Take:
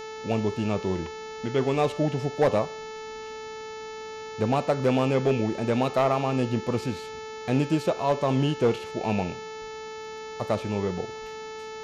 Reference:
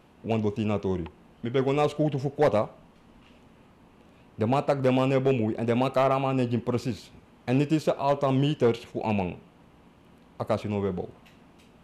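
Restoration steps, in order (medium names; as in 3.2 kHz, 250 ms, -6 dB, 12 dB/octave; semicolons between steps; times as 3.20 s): de-click; de-hum 437.8 Hz, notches 16; 9.60–9.72 s: high-pass 140 Hz 24 dB/octave; 11.20–11.32 s: high-pass 140 Hz 24 dB/octave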